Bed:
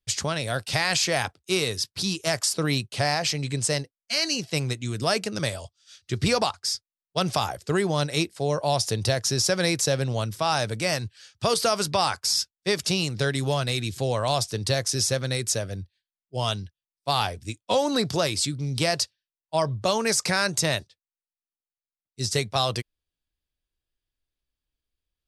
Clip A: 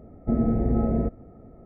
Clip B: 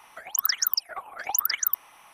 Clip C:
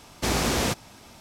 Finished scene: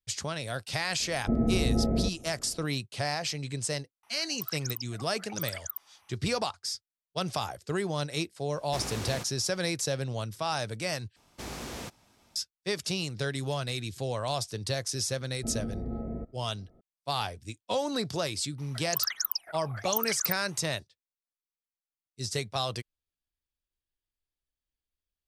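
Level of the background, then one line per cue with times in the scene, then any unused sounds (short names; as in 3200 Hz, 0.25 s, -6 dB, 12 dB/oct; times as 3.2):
bed -7 dB
1 add A -3.5 dB
4.03 add B -13 dB
8.5 add C -13 dB
11.16 replace with C -15 dB
15.16 add A -12.5 dB
18.58 add B -6 dB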